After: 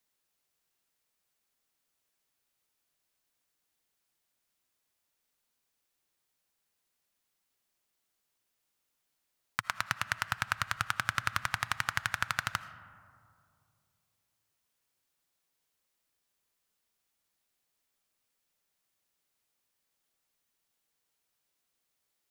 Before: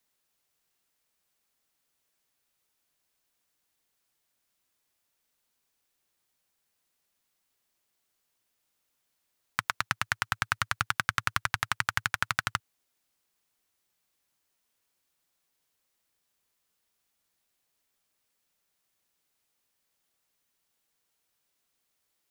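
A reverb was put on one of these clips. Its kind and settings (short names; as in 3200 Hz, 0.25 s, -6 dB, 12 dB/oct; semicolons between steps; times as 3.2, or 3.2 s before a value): digital reverb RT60 2.5 s, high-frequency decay 0.3×, pre-delay 40 ms, DRR 13.5 dB; gain -3 dB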